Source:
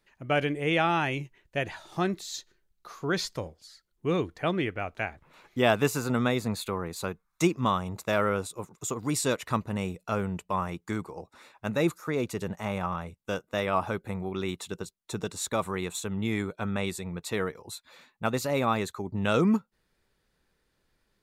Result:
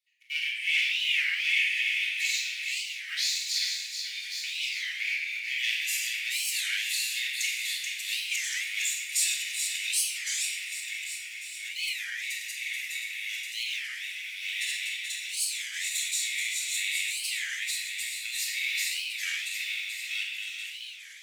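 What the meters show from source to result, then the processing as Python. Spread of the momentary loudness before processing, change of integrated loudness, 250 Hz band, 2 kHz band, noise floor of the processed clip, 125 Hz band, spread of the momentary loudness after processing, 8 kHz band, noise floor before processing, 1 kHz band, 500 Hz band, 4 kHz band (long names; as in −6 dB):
11 LU, +1.0 dB, below −40 dB, +6.5 dB, −40 dBFS, below −40 dB, 8 LU, +9.5 dB, −75 dBFS, below −30 dB, below −40 dB, +10.5 dB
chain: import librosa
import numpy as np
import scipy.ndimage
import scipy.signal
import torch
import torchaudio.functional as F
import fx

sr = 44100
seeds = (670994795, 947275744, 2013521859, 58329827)

p1 = fx.reverse_delay_fb(x, sr, ms=564, feedback_pct=48, wet_db=-0.5)
p2 = fx.leveller(p1, sr, passes=2)
p3 = scipy.signal.sosfilt(scipy.signal.butter(12, 2000.0, 'highpass', fs=sr, output='sos'), p2)
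p4 = p3 + fx.echo_single(p3, sr, ms=432, db=-6.0, dry=0)
p5 = fx.room_shoebox(p4, sr, seeds[0], volume_m3=1300.0, walls='mixed', distance_m=3.4)
p6 = fx.record_warp(p5, sr, rpm=33.33, depth_cents=250.0)
y = p6 * 10.0 ** (-6.5 / 20.0)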